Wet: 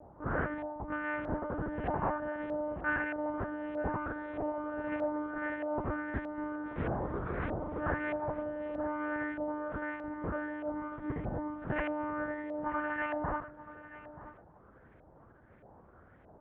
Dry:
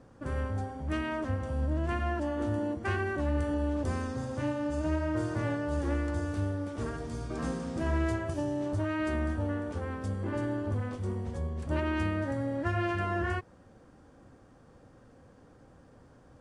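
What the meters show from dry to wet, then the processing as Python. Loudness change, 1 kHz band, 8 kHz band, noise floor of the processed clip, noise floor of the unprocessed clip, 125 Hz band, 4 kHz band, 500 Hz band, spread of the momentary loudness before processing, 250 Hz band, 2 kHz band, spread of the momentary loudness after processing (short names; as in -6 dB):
-3.5 dB, +1.0 dB, under -25 dB, -59 dBFS, -57 dBFS, -10.5 dB, under -10 dB, -1.5 dB, 5 LU, -4.5 dB, +1.0 dB, 5 LU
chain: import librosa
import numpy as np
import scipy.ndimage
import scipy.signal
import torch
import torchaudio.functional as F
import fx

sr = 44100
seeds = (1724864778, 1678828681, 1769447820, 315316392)

p1 = fx.rider(x, sr, range_db=10, speed_s=0.5)
p2 = x + (p1 * librosa.db_to_amplitude(1.5))
p3 = p2 + 10.0 ** (-14.0 / 20.0) * np.pad(p2, (int(90 * sr / 1000.0), 0))[:len(p2)]
p4 = fx.lpc_monotone(p3, sr, seeds[0], pitch_hz=300.0, order=8)
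p5 = fx.filter_lfo_lowpass(p4, sr, shape='saw_up', hz=1.6, low_hz=710.0, high_hz=2400.0, q=2.9)
p6 = scipy.signal.sosfilt(scipy.signal.butter(2, 46.0, 'highpass', fs=sr, output='sos'), p5)
p7 = p6 + fx.echo_single(p6, sr, ms=931, db=-15.5, dry=0)
y = p7 * librosa.db_to_amplitude(-8.5)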